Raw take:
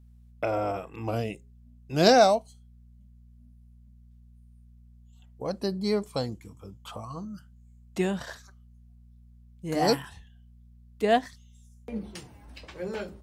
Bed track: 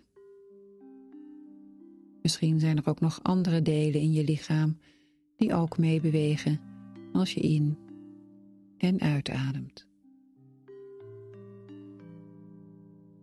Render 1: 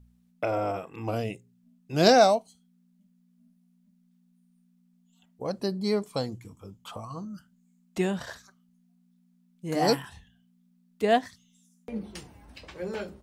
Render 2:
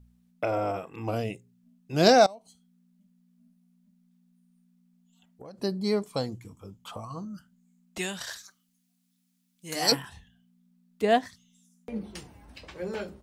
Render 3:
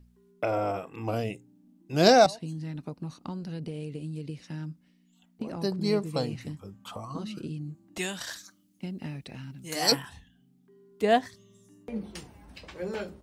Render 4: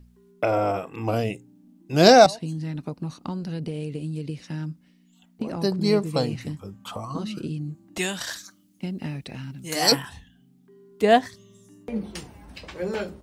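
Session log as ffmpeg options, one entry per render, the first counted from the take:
-af "bandreject=f=60:t=h:w=4,bandreject=f=120:t=h:w=4"
-filter_complex "[0:a]asettb=1/sr,asplit=3[a][b][c];[a]atrim=end=2.264[d];[b]atrim=start=2.26:end=5.58,asetpts=PTS-STARTPTS,afade=t=in:d=0.004:c=qsin,afade=t=out:st=3.316:d=0.004:c=qsin,acompressor=threshold=-42dB:ratio=6:attack=3.2:release=140:knee=1:detection=peak[e];[c]atrim=start=5.576[f];[d][e]acrossfade=d=0.004:c1=hsin:c2=qsin[g];[g][f]acrossfade=d=0.004:c1=qsin:c2=hsin,asettb=1/sr,asplit=3[h][i][j];[h]atrim=end=7.984[k];[i]atrim=start=7.98:end=9.92,asetpts=PTS-STARTPTS,afade=t=in:d=0.004:c=qsin,afade=t=out:st=1.936:d=0.004:c=qsin,tiltshelf=f=1.5k:g=-10[l];[j]atrim=start=9.916[m];[k][l]acrossfade=d=0.004:c1=hsin:c2=qsin[n];[n][m]acrossfade=d=0.004:c1=qsin:c2=hsin"
-filter_complex "[1:a]volume=-11dB[a];[0:a][a]amix=inputs=2:normalize=0"
-af "volume=5.5dB,alimiter=limit=-2dB:level=0:latency=1"

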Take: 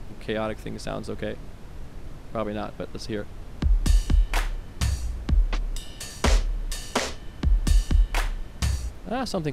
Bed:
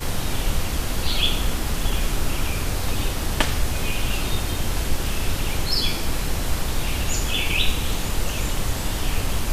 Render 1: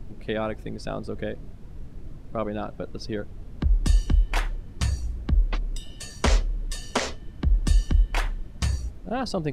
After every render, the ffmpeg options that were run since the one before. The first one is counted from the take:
-af "afftdn=nr=10:nf=-41"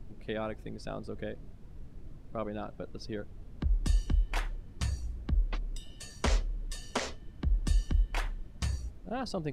-af "volume=-7.5dB"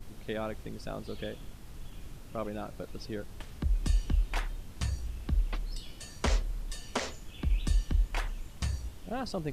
-filter_complex "[1:a]volume=-27.5dB[a];[0:a][a]amix=inputs=2:normalize=0"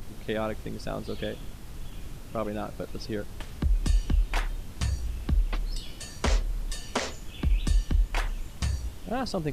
-filter_complex "[0:a]asplit=2[a][b];[b]alimiter=limit=-23.5dB:level=0:latency=1:release=289,volume=-1.5dB[c];[a][c]amix=inputs=2:normalize=0,acompressor=mode=upward:threshold=-44dB:ratio=2.5"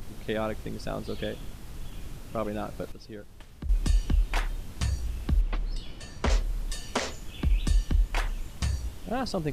-filter_complex "[0:a]asettb=1/sr,asplit=3[a][b][c];[a]atrim=end=5.414[d];[b]atrim=start=5.41:end=6.3,asetpts=PTS-STARTPTS,afade=t=in:d=0.004:c=qsin,afade=t=out:st=0.886:d=0.004:c=qsin,lowpass=f=3k:p=1[e];[c]atrim=start=6.296[f];[d][e]acrossfade=d=0.004:c1=hsin:c2=qsin[g];[g][f]acrossfade=d=0.004:c1=qsin:c2=hsin,asplit=3[h][i][j];[h]atrim=end=2.922[k];[i]atrim=start=2.918:end=3.692,asetpts=PTS-STARTPTS,volume=-9.5dB[l];[j]atrim=start=3.688[m];[k][l]acrossfade=d=0.004:c1=hsin:c2=hsin[n];[n][m]acrossfade=d=0.004:c1=hsin:c2=hsin"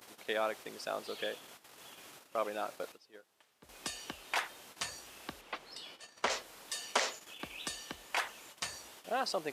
-af "agate=range=-12dB:threshold=-38dB:ratio=16:detection=peak,highpass=580"

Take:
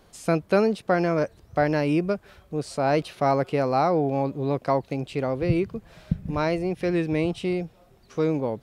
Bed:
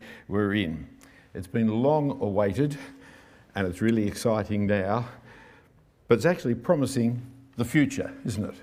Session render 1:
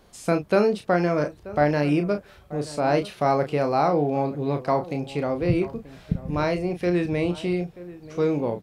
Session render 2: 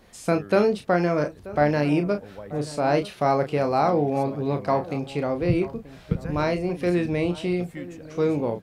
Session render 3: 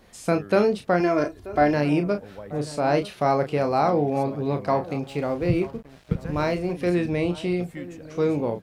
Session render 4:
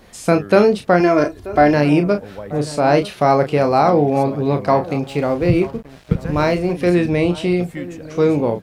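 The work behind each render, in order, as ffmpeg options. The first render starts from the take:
-filter_complex "[0:a]asplit=2[a][b];[b]adelay=34,volume=-7.5dB[c];[a][c]amix=inputs=2:normalize=0,asplit=2[d][e];[e]adelay=932.9,volume=-17dB,highshelf=f=4k:g=-21[f];[d][f]amix=inputs=2:normalize=0"
-filter_complex "[1:a]volume=-16dB[a];[0:a][a]amix=inputs=2:normalize=0"
-filter_complex "[0:a]asettb=1/sr,asplit=3[a][b][c];[a]atrim=end=1.004[d];[b]atrim=start=1:end=1.74,asetpts=PTS-STARTPTS,afade=t=in:d=0.004:c=qsin,afade=t=out:st=0.736:d=0.004:c=qsin,aecho=1:1:2.9:0.59,atrim=end_sample=32634[e];[c]atrim=start=1.736[f];[d][e]acrossfade=d=0.004:c1=hsin:c2=qsin[g];[g][f]acrossfade=d=0.004:c1=qsin:c2=hsin,asettb=1/sr,asplit=3[h][i][j];[h]atrim=end=5.034[k];[i]atrim=start=5.03:end=6.74,asetpts=PTS-STARTPTS,afade=t=in:d=0.004:c=qsin,afade=t=out:st=1.706:d=0.004:c=qsin,aeval=exprs='sgn(val(0))*max(abs(val(0))-0.00376,0)':c=same[l];[j]atrim=start=6.736[m];[k][l]acrossfade=d=0.004:c1=hsin:c2=qsin[n];[n][m]acrossfade=d=0.004:c1=qsin:c2=hsin"
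-af "volume=7.5dB,alimiter=limit=-2dB:level=0:latency=1"

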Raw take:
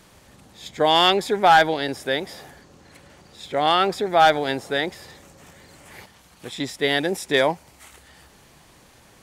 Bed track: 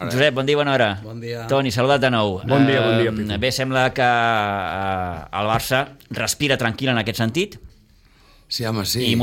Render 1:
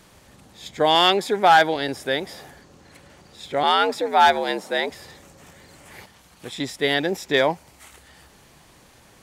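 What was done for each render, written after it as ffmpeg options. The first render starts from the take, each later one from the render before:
-filter_complex "[0:a]asettb=1/sr,asplit=3[a][b][c];[a]atrim=end=0.954[d];[b]atrim=start=0.95:end=1.76,asetpts=PTS-STARTPTS,afade=t=in:d=0.004:c=qsin,afade=t=out:st=0.806:d=0.004:c=qsin,highpass=150[e];[c]atrim=start=1.756[f];[d][e]acrossfade=d=0.004:c1=hsin:c2=qsin[g];[g][f]acrossfade=d=0.004:c1=qsin:c2=hsin,asettb=1/sr,asplit=3[h][i][j];[h]atrim=end=3.634[k];[i]atrim=start=3.63:end=4.9,asetpts=PTS-STARTPTS,afade=t=in:d=0.004:c=qsin,afade=t=out:st=1.266:d=0.004:c=qsin,afreqshift=74[l];[j]atrim=start=4.896[m];[k][l]acrossfade=d=0.004:c1=hsin:c2=qsin[n];[n][m]acrossfade=d=0.004:c1=qsin:c2=hsin,asettb=1/sr,asplit=3[o][p][q];[o]atrim=end=6.944[r];[p]atrim=start=6.94:end=7.51,asetpts=PTS-STARTPTS,afade=t=in:d=0.004:c=qsin,afade=t=out:st=0.566:d=0.004:c=qsin,equalizer=f=9.6k:w=2.8:g=-12.5[s];[q]atrim=start=7.506[t];[r][s]acrossfade=d=0.004:c1=hsin:c2=qsin[u];[u][t]acrossfade=d=0.004:c1=qsin:c2=hsin"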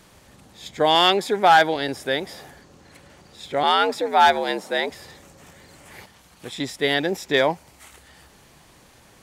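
-af anull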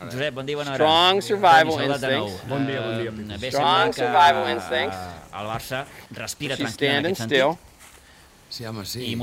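-filter_complex "[1:a]volume=-9.5dB[a];[0:a][a]amix=inputs=2:normalize=0"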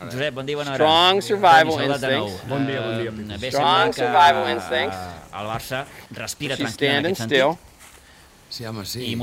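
-af "volume=1.5dB"

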